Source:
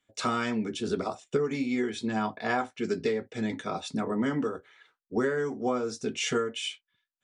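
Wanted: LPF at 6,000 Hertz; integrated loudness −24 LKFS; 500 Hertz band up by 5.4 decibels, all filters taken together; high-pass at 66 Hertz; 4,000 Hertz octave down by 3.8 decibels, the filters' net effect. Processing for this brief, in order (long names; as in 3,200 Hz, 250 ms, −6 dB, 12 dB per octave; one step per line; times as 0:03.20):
high-pass filter 66 Hz
low-pass filter 6,000 Hz
parametric band 500 Hz +6.5 dB
parametric band 4,000 Hz −5 dB
level +3.5 dB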